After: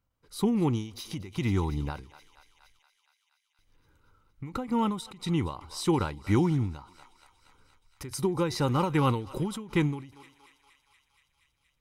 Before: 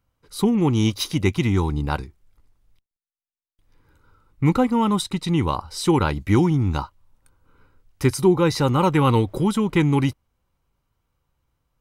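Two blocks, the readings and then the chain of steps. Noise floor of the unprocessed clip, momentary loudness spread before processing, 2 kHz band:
below −85 dBFS, 7 LU, −9.0 dB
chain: on a send: feedback echo with a high-pass in the loop 235 ms, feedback 75%, high-pass 780 Hz, level −18.5 dB
on the sum: every ending faded ahead of time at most 110 dB per second
level −6.5 dB

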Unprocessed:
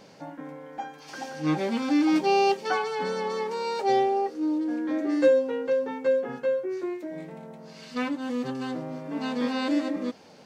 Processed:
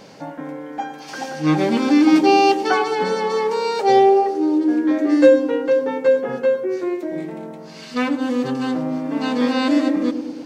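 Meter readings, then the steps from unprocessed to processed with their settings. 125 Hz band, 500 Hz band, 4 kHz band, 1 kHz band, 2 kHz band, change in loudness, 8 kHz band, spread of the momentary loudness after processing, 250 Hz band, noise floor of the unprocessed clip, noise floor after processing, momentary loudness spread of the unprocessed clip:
+8.5 dB, +8.0 dB, +8.0 dB, +8.5 dB, +8.0 dB, +8.5 dB, can't be measured, 17 LU, +9.5 dB, −50 dBFS, −37 dBFS, 17 LU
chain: feedback echo with a band-pass in the loop 105 ms, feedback 70%, band-pass 340 Hz, level −7.5 dB
level +8 dB

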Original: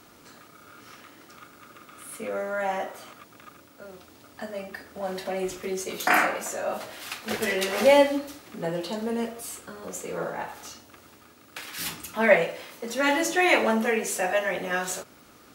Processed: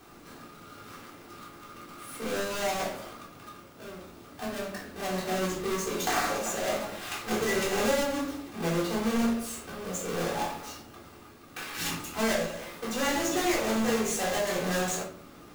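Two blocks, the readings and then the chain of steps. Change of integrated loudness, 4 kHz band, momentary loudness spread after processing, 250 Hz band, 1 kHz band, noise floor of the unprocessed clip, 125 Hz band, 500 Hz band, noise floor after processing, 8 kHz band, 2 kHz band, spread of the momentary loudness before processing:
−4.0 dB, −0.5 dB, 20 LU, 0.0 dB, −3.5 dB, −54 dBFS, +4.0 dB, −5.0 dB, −50 dBFS, +1.0 dB, −6.5 dB, 19 LU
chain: each half-wave held at its own peak
dynamic equaliser 6,700 Hz, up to +6 dB, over −45 dBFS, Q 3.8
downward compressor 6 to 1, threshold −22 dBFS, peak gain reduction 13 dB
rectangular room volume 500 cubic metres, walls furnished, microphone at 3.7 metres
level −9 dB

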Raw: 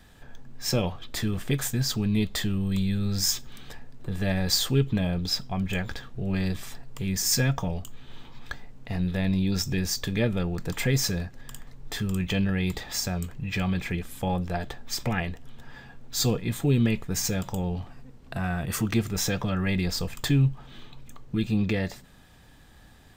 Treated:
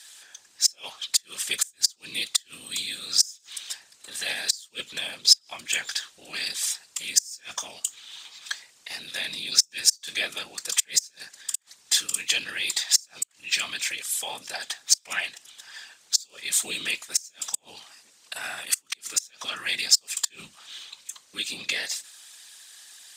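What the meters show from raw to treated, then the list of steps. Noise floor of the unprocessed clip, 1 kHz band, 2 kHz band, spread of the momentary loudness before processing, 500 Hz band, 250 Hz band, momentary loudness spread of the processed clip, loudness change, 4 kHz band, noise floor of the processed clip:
−52 dBFS, −5.5 dB, +3.5 dB, 14 LU, −14.0 dB, −25.0 dB, 19 LU, +2.0 dB, +7.5 dB, −60 dBFS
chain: RIAA equalisation recording
gate with flip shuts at −9 dBFS, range −33 dB
random phases in short frames
meter weighting curve ITU-R 468
level −3.5 dB

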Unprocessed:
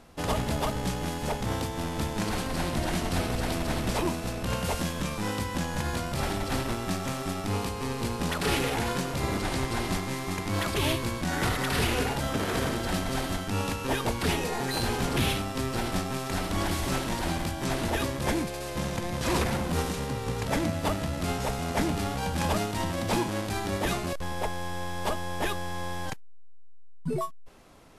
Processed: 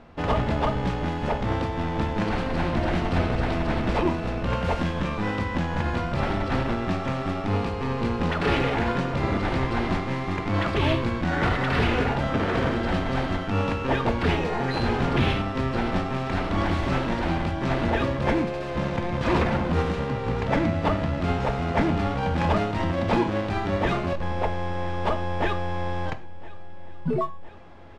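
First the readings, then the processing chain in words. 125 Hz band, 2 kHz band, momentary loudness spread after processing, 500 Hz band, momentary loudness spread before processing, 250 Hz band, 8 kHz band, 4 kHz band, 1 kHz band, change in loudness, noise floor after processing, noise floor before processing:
+5.0 dB, +3.5 dB, 5 LU, +5.0 dB, 5 LU, +5.0 dB, −14.0 dB, −1.5 dB, +4.5 dB, +4.0 dB, −32 dBFS, −39 dBFS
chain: low-pass filter 2,600 Hz 12 dB per octave
repeating echo 1,011 ms, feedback 59%, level −21 dB
reverb whose tail is shaped and stops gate 140 ms falling, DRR 9.5 dB
level +4.5 dB

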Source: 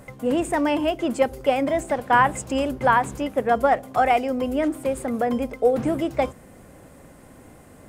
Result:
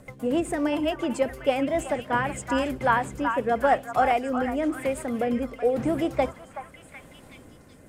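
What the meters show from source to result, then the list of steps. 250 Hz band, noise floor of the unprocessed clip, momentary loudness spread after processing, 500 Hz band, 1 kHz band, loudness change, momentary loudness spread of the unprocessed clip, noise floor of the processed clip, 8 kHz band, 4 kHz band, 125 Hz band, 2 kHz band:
−2.0 dB, −48 dBFS, 6 LU, −3.0 dB, −4.0 dB, −3.5 dB, 6 LU, −50 dBFS, −3.5 dB, −2.5 dB, −2.5 dB, −3.0 dB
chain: rotating-speaker cabinet horn 7.5 Hz, later 0.9 Hz, at 0:01.06
on a send: echo through a band-pass that steps 375 ms, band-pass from 1,200 Hz, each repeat 0.7 octaves, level −4 dB
on the sum: level −1 dB

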